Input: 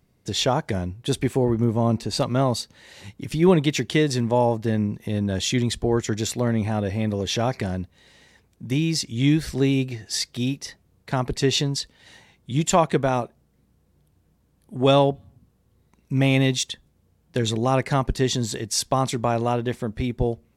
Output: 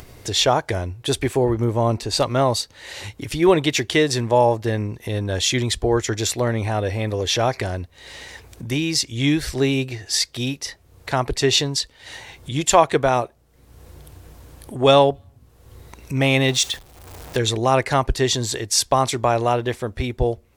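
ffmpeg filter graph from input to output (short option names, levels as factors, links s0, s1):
-filter_complex "[0:a]asettb=1/sr,asplit=3[s0][s1][s2];[s0]atrim=end=16.484[s3];[s1]atrim=start=16.48:end=17.37,asetpts=PTS-STARTPTS,afade=t=in:d=0.004:c=qsin,afade=t=out:st=0.886:d=0.004:c=qsin,aeval=exprs='val(0)+0.5*0.015*sgn(val(0))':c=same,agate=range=0.0224:threshold=0.0158:ratio=3:release=100:detection=peak,equalizer=f=760:w=4:g=4[s4];[s2]atrim=start=17.366[s5];[s3][s4]acrossfade=d=0.004:c1=hsin:c2=qsin[s6];[s6][s5]acrossfade=d=0.004:c1=qsin:c2=hsin,equalizer=f=190:t=o:w=0.89:g=-14,acompressor=mode=upward:threshold=0.0251:ratio=2.5,volume=1.88"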